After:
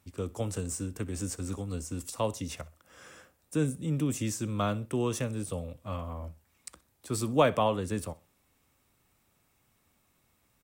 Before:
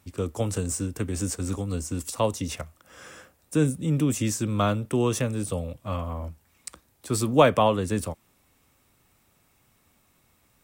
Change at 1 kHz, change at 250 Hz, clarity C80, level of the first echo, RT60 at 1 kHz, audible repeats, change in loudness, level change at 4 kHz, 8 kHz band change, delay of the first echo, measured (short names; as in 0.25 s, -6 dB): -6.0 dB, -6.0 dB, none, -21.0 dB, none, 2, -6.0 dB, -6.0 dB, -6.0 dB, 63 ms